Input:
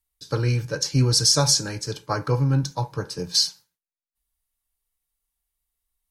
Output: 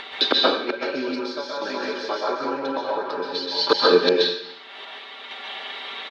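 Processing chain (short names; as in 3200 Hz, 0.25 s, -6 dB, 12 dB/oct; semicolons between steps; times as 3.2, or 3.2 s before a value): comb 5.1 ms, depth 72%; tapped delay 0.157/0.205/0.211/0.365/0.735 s -16.5/-17/-16/-17/-10 dB; step gate "xxxxx..xxxxxxxx." 65 bpm -12 dB; flipped gate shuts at -22 dBFS, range -40 dB; Chebyshev band-pass 270–3700 Hz, order 4; upward compressor, threshold -43 dBFS; plate-style reverb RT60 0.68 s, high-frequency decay 1×, pre-delay 0.115 s, DRR -3 dB; maximiser +29.5 dB; gain -3 dB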